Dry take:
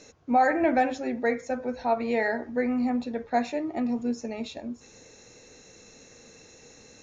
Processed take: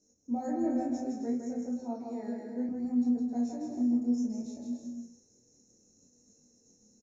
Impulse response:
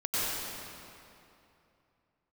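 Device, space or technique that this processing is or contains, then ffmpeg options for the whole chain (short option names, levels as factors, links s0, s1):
double-tracked vocal: -filter_complex "[0:a]asettb=1/sr,asplit=3[s0][s1][s2];[s0]atrim=end=1.584[s3];[s1]atrim=start=1.58:end=2.69,asetpts=PTS-STARTPTS,afade=t=in:d=0.004:c=qsin,afade=t=out:st=1.106:d=0.004:c=qsin,highpass=190[s4];[s2]atrim=start=2.686[s5];[s3][s4]acrossfade=d=0.004:c1=hsin:c2=qsin[s6];[s6][s5]acrossfade=d=0.004:c1=qsin:c2=hsin,agate=range=0.316:threshold=0.00316:ratio=16:detection=peak,firequalizer=gain_entry='entry(150,0);entry(210,8);entry(440,-4);entry(1400,-17);entry(3000,-26);entry(5600,5)':delay=0.05:min_phase=1,asplit=2[s7][s8];[s8]adelay=33,volume=0.562[s9];[s7][s9]amix=inputs=2:normalize=0,aecho=1:1:160|264|331.6|375.5|404.1:0.631|0.398|0.251|0.158|0.1,flanger=delay=20:depth=4.8:speed=0.63,volume=0.376"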